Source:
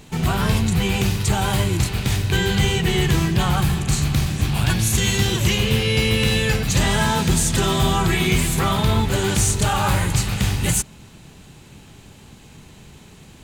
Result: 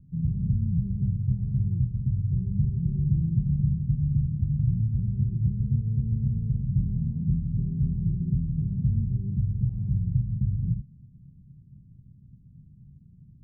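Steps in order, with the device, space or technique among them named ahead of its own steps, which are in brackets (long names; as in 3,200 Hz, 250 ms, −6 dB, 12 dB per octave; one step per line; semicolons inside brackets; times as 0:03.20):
the neighbour's flat through the wall (low-pass filter 200 Hz 24 dB per octave; parametric band 130 Hz +7 dB 0.84 octaves)
level −8.5 dB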